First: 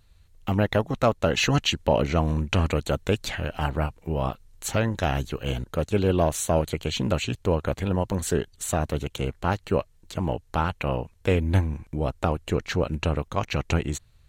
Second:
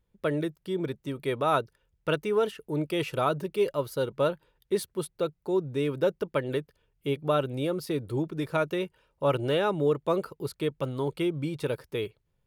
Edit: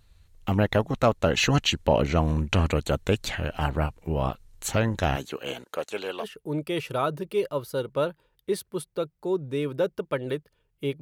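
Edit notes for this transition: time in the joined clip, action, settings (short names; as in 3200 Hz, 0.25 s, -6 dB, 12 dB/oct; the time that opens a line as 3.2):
first
5.15–6.25 HPF 220 Hz -> 930 Hz
6.22 switch to second from 2.45 s, crossfade 0.06 s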